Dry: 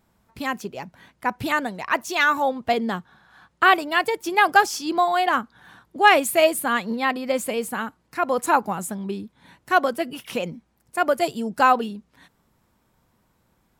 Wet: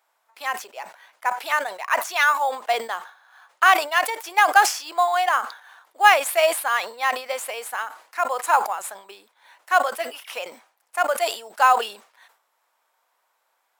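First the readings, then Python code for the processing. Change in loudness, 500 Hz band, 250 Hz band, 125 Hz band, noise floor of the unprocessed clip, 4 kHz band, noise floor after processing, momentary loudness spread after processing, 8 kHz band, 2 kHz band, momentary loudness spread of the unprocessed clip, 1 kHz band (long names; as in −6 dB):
+0.5 dB, −2.5 dB, −18.5 dB, below −25 dB, −67 dBFS, +0.5 dB, −71 dBFS, 16 LU, +2.5 dB, +1.0 dB, 15 LU, +1.0 dB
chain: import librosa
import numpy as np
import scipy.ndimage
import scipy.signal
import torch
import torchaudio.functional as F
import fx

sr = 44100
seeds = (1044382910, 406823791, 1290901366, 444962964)

p1 = fx.sample_hold(x, sr, seeds[0], rate_hz=8000.0, jitter_pct=0)
p2 = x + (p1 * 10.0 ** (-10.5 / 20.0))
p3 = scipy.signal.sosfilt(scipy.signal.butter(4, 640.0, 'highpass', fs=sr, output='sos'), p2)
p4 = fx.sustainer(p3, sr, db_per_s=130.0)
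y = p4 * 10.0 ** (-1.0 / 20.0)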